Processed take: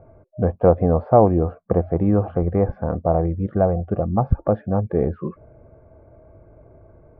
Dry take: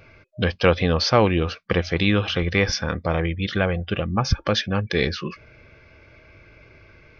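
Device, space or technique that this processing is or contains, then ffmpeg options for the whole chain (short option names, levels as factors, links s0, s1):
under water: -af "lowpass=f=920:w=0.5412,lowpass=f=920:w=1.3066,equalizer=f=690:t=o:w=0.3:g=9,volume=1.33"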